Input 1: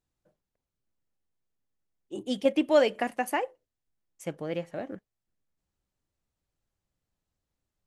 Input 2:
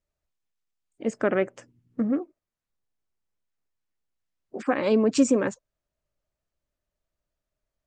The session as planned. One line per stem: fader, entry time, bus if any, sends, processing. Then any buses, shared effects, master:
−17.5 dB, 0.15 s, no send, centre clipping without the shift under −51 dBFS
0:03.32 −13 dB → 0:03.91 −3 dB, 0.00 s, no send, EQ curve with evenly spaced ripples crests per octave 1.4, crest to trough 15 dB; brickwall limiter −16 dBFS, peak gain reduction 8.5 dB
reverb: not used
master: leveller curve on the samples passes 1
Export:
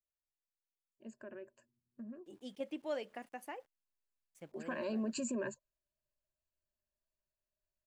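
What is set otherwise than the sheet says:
stem 2 −13.0 dB → −24.5 dB
master: missing leveller curve on the samples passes 1

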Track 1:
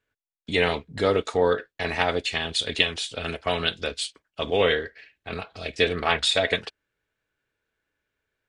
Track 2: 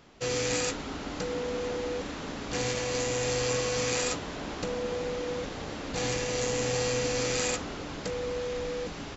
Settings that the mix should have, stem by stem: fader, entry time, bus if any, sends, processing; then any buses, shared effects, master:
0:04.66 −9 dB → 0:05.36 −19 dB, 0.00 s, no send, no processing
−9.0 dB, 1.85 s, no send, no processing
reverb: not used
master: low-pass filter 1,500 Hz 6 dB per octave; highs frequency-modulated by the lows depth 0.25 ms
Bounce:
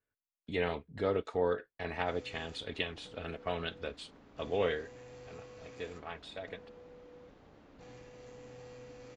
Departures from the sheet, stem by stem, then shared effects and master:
stem 2 −9.0 dB → −20.5 dB
master: missing highs frequency-modulated by the lows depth 0.25 ms

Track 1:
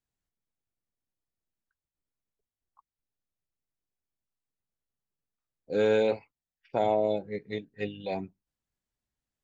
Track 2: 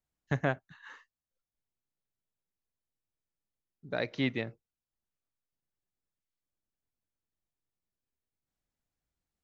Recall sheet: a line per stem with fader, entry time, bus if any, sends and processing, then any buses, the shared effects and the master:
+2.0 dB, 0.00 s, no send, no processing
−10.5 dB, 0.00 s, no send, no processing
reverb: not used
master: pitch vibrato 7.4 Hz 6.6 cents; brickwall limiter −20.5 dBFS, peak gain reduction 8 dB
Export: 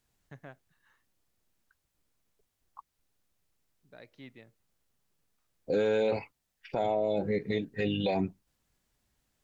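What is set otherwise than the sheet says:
stem 1 +2.0 dB → +13.0 dB
stem 2 −10.5 dB → −19.0 dB

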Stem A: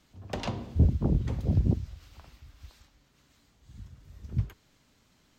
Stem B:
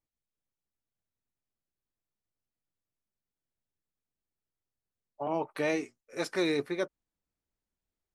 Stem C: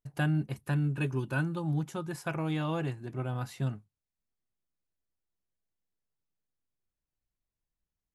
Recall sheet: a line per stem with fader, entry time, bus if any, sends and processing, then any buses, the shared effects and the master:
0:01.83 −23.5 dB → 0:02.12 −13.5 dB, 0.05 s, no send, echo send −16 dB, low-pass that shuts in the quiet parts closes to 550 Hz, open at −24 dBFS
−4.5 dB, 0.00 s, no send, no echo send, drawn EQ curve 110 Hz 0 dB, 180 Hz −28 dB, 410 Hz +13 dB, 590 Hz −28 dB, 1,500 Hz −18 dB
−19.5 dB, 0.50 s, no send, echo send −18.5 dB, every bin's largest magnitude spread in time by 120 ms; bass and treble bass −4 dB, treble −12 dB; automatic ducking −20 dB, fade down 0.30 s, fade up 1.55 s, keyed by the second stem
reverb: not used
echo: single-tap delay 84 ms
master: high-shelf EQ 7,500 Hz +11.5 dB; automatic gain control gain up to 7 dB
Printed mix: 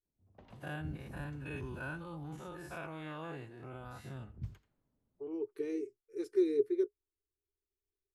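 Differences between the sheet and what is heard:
stem C −19.5 dB → −13.5 dB
master: missing automatic gain control gain up to 7 dB

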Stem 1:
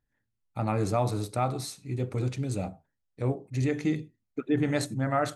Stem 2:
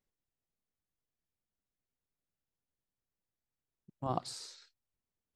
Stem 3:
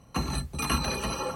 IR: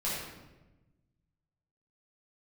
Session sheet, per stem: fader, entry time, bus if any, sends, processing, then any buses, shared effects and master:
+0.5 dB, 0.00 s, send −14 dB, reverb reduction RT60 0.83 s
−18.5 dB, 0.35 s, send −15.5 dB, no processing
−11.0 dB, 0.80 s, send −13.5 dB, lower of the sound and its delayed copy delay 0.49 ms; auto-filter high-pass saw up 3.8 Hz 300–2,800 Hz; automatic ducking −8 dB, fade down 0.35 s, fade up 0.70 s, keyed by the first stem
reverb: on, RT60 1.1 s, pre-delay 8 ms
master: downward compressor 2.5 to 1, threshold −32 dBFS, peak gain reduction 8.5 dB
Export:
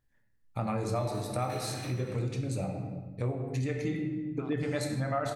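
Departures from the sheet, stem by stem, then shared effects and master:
stem 1: send −14 dB → −5.5 dB
stem 2 −18.5 dB → −10.5 dB
stem 3: send −13.5 dB → −6.5 dB

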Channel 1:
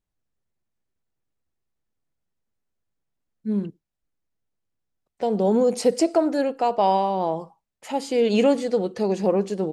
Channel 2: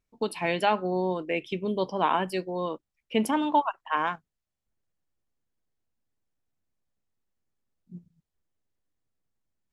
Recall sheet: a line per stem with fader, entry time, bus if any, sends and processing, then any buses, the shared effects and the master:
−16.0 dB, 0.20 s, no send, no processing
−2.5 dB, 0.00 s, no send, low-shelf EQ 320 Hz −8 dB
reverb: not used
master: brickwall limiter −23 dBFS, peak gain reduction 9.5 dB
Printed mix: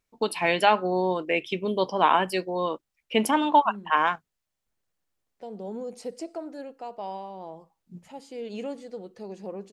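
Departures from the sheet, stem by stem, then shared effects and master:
stem 2 −2.5 dB → +5.5 dB
master: missing brickwall limiter −23 dBFS, peak gain reduction 9.5 dB

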